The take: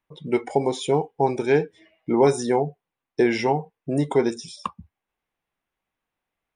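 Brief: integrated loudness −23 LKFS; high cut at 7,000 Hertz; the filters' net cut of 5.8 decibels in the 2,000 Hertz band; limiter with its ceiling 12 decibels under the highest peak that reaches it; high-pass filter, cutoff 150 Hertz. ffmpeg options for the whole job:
ffmpeg -i in.wav -af "highpass=150,lowpass=7000,equalizer=frequency=2000:width_type=o:gain=-7,volume=7dB,alimiter=limit=-11.5dB:level=0:latency=1" out.wav

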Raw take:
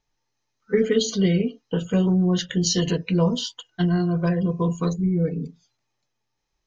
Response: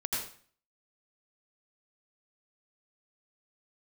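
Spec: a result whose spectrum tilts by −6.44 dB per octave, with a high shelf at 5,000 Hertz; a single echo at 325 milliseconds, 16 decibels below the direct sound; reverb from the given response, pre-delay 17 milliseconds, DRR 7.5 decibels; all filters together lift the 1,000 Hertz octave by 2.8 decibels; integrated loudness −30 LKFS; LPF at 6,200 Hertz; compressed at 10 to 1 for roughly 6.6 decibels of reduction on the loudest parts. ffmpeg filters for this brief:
-filter_complex "[0:a]lowpass=6200,equalizer=frequency=1000:width_type=o:gain=3.5,highshelf=frequency=5000:gain=-4.5,acompressor=threshold=-21dB:ratio=10,aecho=1:1:325:0.158,asplit=2[link_01][link_02];[1:a]atrim=start_sample=2205,adelay=17[link_03];[link_02][link_03]afir=irnorm=-1:irlink=0,volume=-12.5dB[link_04];[link_01][link_04]amix=inputs=2:normalize=0,volume=-4.5dB"

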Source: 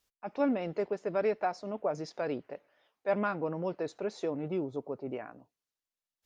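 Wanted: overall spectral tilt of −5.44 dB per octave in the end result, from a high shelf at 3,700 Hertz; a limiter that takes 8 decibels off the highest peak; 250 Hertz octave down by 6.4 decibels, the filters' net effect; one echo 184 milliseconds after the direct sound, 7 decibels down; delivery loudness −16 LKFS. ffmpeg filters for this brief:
ffmpeg -i in.wav -af "equalizer=frequency=250:width_type=o:gain=-8.5,highshelf=frequency=3700:gain=-5,alimiter=level_in=3.5dB:limit=-24dB:level=0:latency=1,volume=-3.5dB,aecho=1:1:184:0.447,volume=22.5dB" out.wav

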